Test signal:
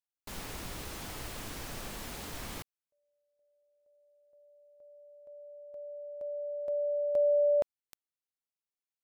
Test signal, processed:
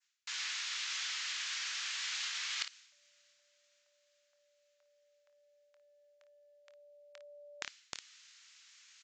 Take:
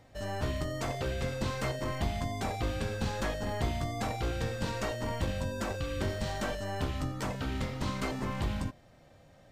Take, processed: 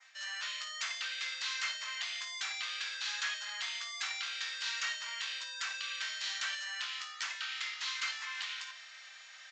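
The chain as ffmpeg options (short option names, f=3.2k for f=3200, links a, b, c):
-af "areverse,acompressor=mode=upward:threshold=-33dB:ratio=2.5:attack=15:release=304:knee=2.83:detection=peak,areverse,adynamicequalizer=threshold=0.00251:dfrequency=3700:dqfactor=0.81:tfrequency=3700:tqfactor=0.81:attack=5:release=100:ratio=0.375:range=2:mode=boostabove:tftype=bell,highpass=f=1.5k:w=0.5412,highpass=f=1.5k:w=1.3066,aecho=1:1:25|55:0.251|0.251,aresample=16000,asoftclip=type=tanh:threshold=-26dB,aresample=44100,volume=3.5dB" -ar 48000 -c:a ac3 -b:a 96k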